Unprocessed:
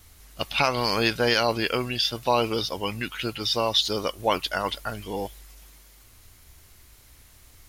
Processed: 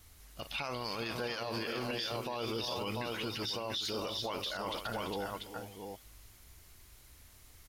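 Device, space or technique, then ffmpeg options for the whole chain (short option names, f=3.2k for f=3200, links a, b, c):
stacked limiters: -af "aecho=1:1:44|337|411|488|689:0.119|0.15|0.251|0.106|0.376,alimiter=limit=-13.5dB:level=0:latency=1:release=104,alimiter=limit=-18dB:level=0:latency=1:release=40,alimiter=limit=-22dB:level=0:latency=1:release=15,volume=-6dB"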